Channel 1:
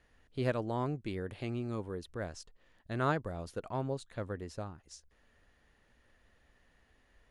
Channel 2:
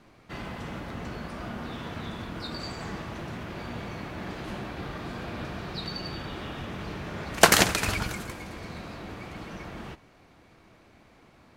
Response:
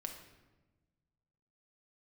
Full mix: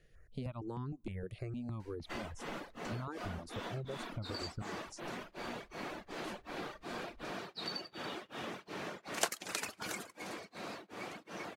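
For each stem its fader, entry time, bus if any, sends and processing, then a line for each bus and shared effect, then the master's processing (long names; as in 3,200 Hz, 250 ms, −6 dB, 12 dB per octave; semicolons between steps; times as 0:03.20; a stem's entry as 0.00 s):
0.0 dB, 0.00 s, send −21 dB, downward compressor 2.5 to 1, threshold −37 dBFS, peak gain reduction 8.5 dB; step-sequenced phaser 6.5 Hz 250–2,300 Hz
−1.5 dB, 1.80 s, send −13.5 dB, high-pass filter 390 Hz 12 dB per octave; parametric band 7,800 Hz +4.5 dB 1.5 octaves; tremolo along a rectified sine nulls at 2.7 Hz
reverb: on, RT60 1.2 s, pre-delay 5 ms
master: low-shelf EQ 360 Hz +8 dB; reverb reduction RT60 0.52 s; downward compressor 2.5 to 1, threshold −39 dBFS, peak gain reduction 19 dB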